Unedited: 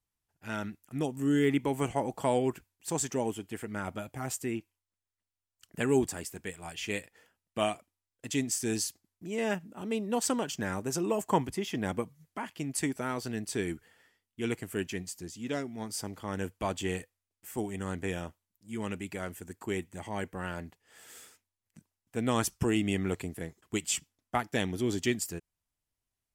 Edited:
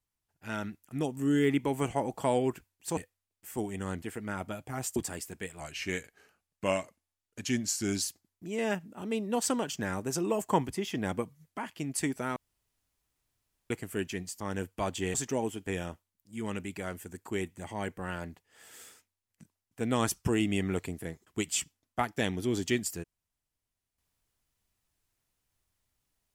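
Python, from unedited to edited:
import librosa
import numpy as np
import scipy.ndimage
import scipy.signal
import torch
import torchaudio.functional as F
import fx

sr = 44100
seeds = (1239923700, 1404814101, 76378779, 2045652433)

y = fx.edit(x, sr, fx.swap(start_s=2.97, length_s=0.52, other_s=16.97, other_length_s=1.05),
    fx.cut(start_s=4.43, length_s=1.57),
    fx.speed_span(start_s=6.64, length_s=2.18, speed=0.9),
    fx.room_tone_fill(start_s=13.16, length_s=1.34),
    fx.cut(start_s=15.2, length_s=1.03), tone=tone)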